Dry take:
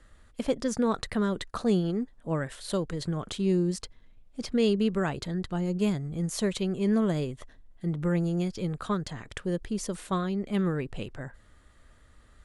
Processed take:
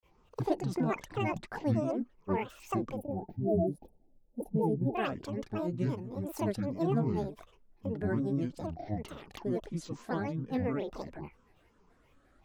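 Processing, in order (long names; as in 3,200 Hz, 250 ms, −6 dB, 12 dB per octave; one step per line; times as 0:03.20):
hollow resonant body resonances 310/620/1,400 Hz, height 14 dB, ringing for 25 ms
granular cloud 135 ms, grains 23 per second, spray 22 ms, pitch spread up and down by 12 semitones
gain on a spectral selection 0:02.97–0:04.95, 920–9,300 Hz −28 dB
level −8.5 dB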